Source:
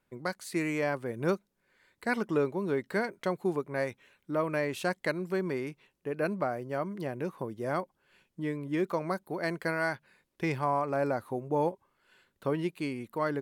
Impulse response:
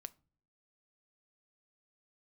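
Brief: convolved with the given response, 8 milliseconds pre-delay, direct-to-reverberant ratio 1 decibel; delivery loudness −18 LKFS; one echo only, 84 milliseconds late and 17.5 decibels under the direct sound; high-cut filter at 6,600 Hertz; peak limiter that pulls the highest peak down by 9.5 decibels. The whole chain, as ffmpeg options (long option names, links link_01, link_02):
-filter_complex "[0:a]lowpass=6600,alimiter=level_in=2.5dB:limit=-24dB:level=0:latency=1,volume=-2.5dB,aecho=1:1:84:0.133,asplit=2[link_01][link_02];[1:a]atrim=start_sample=2205,adelay=8[link_03];[link_02][link_03]afir=irnorm=-1:irlink=0,volume=4.5dB[link_04];[link_01][link_04]amix=inputs=2:normalize=0,volume=17.5dB"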